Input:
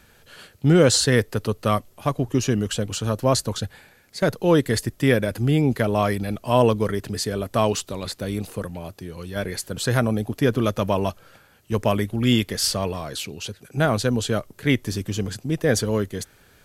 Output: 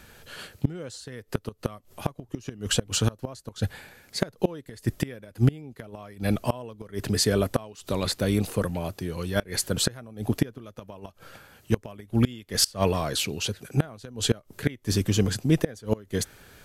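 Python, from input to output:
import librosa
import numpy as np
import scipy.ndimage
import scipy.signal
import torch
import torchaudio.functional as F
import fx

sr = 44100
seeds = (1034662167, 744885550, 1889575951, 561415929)

y = fx.gate_flip(x, sr, shuts_db=-12.0, range_db=-26)
y = F.gain(torch.from_numpy(y), 3.5).numpy()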